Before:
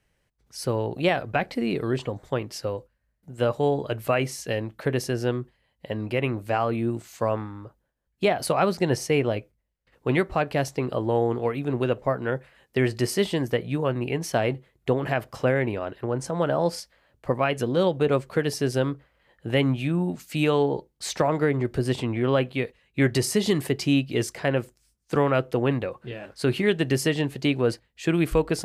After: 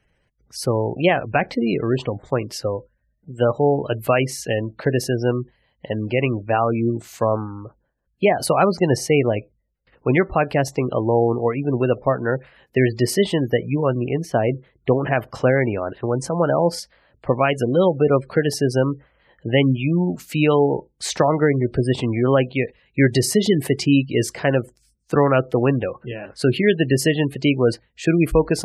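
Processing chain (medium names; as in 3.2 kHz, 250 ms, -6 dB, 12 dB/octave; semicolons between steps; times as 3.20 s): spectral gate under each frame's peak -25 dB strong; 13.95–14.49 s: treble shelf 2 kHz -11.5 dB; trim +5.5 dB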